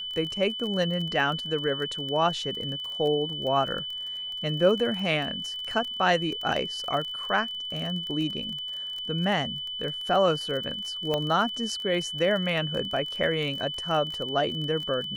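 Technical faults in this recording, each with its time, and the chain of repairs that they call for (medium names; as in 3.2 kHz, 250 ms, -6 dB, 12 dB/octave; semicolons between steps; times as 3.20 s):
crackle 25 per s -32 dBFS
whine 3 kHz -32 dBFS
11.14 s: pop -14 dBFS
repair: de-click; band-stop 3 kHz, Q 30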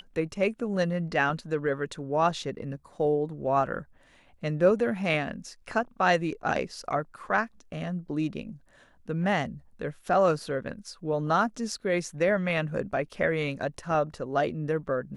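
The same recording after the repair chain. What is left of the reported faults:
nothing left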